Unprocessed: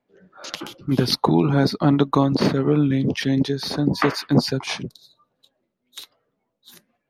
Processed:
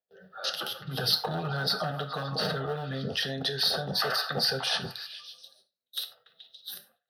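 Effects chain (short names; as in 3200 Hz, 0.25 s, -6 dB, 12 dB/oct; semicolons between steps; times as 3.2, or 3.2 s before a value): tremolo 8.2 Hz, depth 37%; delay with a stepping band-pass 0.142 s, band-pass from 1000 Hz, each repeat 0.7 oct, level -11 dB; gate with hold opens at -53 dBFS; 0.77–2.94 comb 6.5 ms, depth 56%; hard clip -12.5 dBFS, distortion -14 dB; dynamic EQ 1100 Hz, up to +4 dB, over -37 dBFS, Q 0.87; limiter -23 dBFS, peak gain reduction 14.5 dB; HPF 110 Hz; tone controls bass -5 dB, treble +7 dB; fixed phaser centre 1500 Hz, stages 8; non-linear reverb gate 0.12 s falling, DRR 8 dB; gain +5.5 dB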